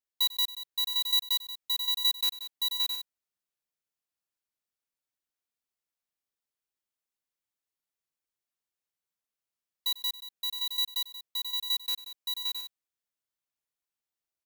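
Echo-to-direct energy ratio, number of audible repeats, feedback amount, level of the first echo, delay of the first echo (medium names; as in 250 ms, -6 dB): -1.5 dB, 5, no regular repeats, -18.5 dB, 96 ms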